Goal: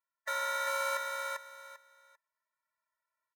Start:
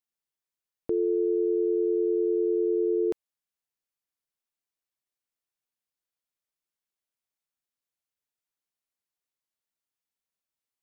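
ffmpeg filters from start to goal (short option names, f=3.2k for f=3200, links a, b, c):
-filter_complex "[0:a]aresample=11025,aeval=exprs='(mod(17.8*val(0)+1,2)-1)/17.8':c=same,aresample=44100,equalizer=f=190:t=o:w=0.48:g=-4,acontrast=58,asoftclip=type=tanh:threshold=-19dB,alimiter=limit=-23.5dB:level=0:latency=1,highpass=99,asetrate=142443,aresample=44100,firequalizer=gain_entry='entry(130,0);entry(210,-19);entry(380,-3);entry(780,7);entry(1200,7);entry(1800,11);entry(2700,-13)':delay=0.05:min_phase=1,asplit=2[a][b];[b]aecho=0:1:395|790|1185:0.631|0.126|0.0252[c];[a][c]amix=inputs=2:normalize=0,dynaudnorm=f=730:g=7:m=9dB,aecho=1:1:3:0.83,afftfilt=real='re*eq(mod(floor(b*sr/1024/220),2),0)':imag='im*eq(mod(floor(b*sr/1024/220),2),0)':win_size=1024:overlap=0.75"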